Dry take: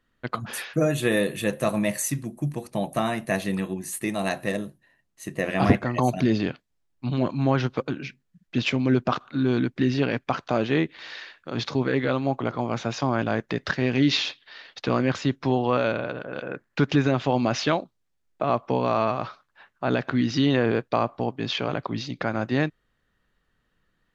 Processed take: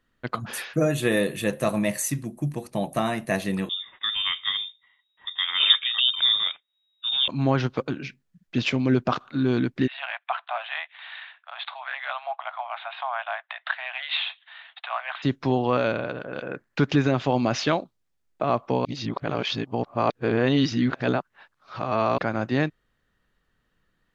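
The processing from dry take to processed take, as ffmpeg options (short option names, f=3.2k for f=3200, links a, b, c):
-filter_complex "[0:a]asettb=1/sr,asplit=3[a][b][c];[a]atrim=end=3.694[d];[b]atrim=start=3.69:end=7.28,asetpts=PTS-STARTPTS,afade=t=in:d=0.004:c=qsin,afade=t=out:st=3.586:d=0.004:c=qsin,lowpass=f=3.2k:t=q:w=0.5098,lowpass=f=3.2k:t=q:w=0.6013,lowpass=f=3.2k:t=q:w=0.9,lowpass=f=3.2k:t=q:w=2.563,afreqshift=-3800[e];[c]atrim=start=7.276[f];[d][e]acrossfade=d=0.004:c1=hsin:c2=qsin[g];[g][f]acrossfade=d=0.004:c1=qsin:c2=hsin,asplit=3[h][i][j];[h]afade=t=out:st=9.86:d=0.02[k];[i]asuperpass=centerf=1600:order=20:qfactor=0.51,afade=t=in:st=9.86:d=0.02,afade=t=out:st=15.22:d=0.02[l];[j]afade=t=in:st=15.22:d=0.02[m];[k][l][m]amix=inputs=3:normalize=0,asplit=3[n][o][p];[n]atrim=end=18.852[q];[o]atrim=start=18.848:end=22.182,asetpts=PTS-STARTPTS,areverse[r];[p]atrim=start=22.178[s];[q][r]acrossfade=d=0.004:c1=hsin:c2=hsin[t];[t][s]acrossfade=d=0.004:c1=hsin:c2=hsin"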